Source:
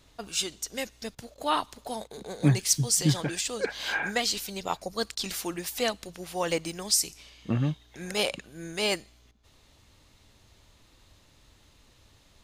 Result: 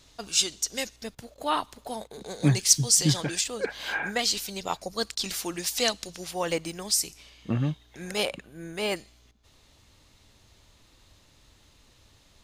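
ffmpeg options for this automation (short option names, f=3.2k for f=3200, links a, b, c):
-af "asetnsamples=n=441:p=0,asendcmd='0.96 equalizer g -2;2.21 equalizer g 5.5;3.44 equalizer g -4;4.19 equalizer g 3;5.54 equalizer g 9.5;6.31 equalizer g -1;8.25 equalizer g -8;8.96 equalizer g 2',equalizer=f=5.6k:t=o:w=1.6:g=7.5"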